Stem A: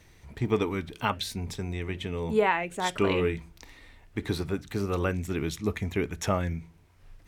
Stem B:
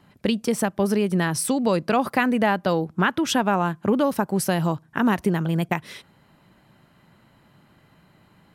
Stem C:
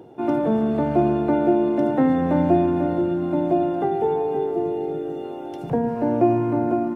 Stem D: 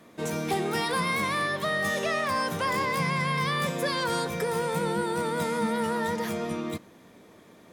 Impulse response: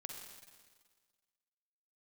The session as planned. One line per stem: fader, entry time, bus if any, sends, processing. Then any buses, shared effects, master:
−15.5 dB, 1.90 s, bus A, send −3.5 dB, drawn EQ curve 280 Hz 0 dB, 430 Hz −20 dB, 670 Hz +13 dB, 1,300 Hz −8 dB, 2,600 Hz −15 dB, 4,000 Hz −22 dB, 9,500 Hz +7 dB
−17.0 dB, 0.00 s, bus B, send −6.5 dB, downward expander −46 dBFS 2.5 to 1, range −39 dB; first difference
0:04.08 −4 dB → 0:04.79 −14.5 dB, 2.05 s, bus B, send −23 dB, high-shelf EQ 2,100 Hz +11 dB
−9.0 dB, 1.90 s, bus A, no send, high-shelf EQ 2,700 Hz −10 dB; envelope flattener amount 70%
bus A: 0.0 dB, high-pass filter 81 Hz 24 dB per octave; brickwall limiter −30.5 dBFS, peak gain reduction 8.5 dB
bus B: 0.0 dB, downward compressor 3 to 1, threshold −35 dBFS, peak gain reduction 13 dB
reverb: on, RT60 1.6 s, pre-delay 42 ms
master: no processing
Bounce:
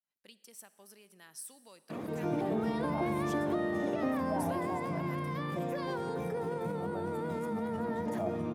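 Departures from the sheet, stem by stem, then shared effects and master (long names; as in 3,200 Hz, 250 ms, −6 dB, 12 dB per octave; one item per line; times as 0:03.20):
stem C −4.0 dB → −14.0 dB
master: extra tilt shelving filter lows +4 dB, about 1,100 Hz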